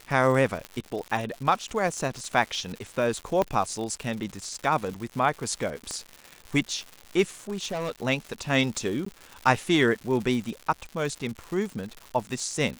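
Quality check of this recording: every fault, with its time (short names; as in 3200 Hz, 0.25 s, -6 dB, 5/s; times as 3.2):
crackle 210/s -33 dBFS
0.65 pop -19 dBFS
3.42 pop -12 dBFS
5.91 pop -19 dBFS
7.49–7.92 clipped -26 dBFS
9.05–9.06 gap 14 ms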